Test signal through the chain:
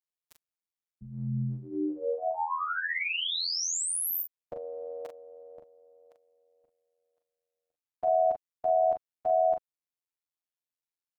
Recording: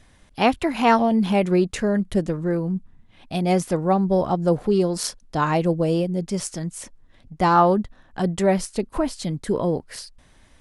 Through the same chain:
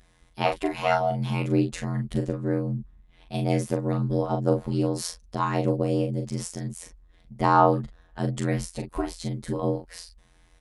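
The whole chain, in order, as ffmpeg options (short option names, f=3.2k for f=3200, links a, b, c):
-filter_complex "[0:a]afftfilt=real='hypot(re,im)*cos(PI*b)':imag='0':win_size=1024:overlap=0.75,aeval=exprs='val(0)*sin(2*PI*42*n/s)':c=same,asplit=2[a][b];[b]adelay=40,volume=-6dB[c];[a][c]amix=inputs=2:normalize=0"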